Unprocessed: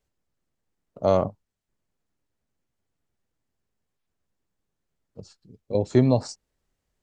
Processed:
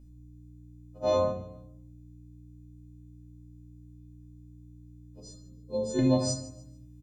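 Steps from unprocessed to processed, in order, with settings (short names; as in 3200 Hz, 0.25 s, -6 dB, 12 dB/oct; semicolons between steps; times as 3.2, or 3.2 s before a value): frequency quantiser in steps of 3 st; 5.2–5.99 fixed phaser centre 450 Hz, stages 8; hum 60 Hz, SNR 16 dB; feedback echo 0.147 s, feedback 30%, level -17 dB; shoebox room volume 1000 m³, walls furnished, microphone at 2.3 m; gain -8.5 dB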